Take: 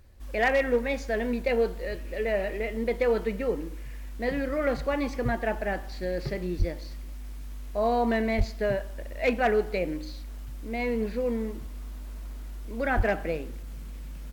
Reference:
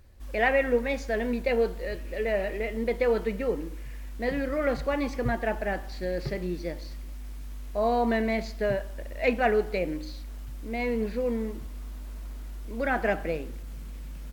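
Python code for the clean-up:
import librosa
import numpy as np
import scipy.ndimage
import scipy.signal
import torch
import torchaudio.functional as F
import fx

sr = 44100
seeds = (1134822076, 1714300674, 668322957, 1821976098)

y = fx.fix_declip(x, sr, threshold_db=-16.0)
y = fx.fix_deplosive(y, sr, at_s=(6.58, 8.37, 12.96))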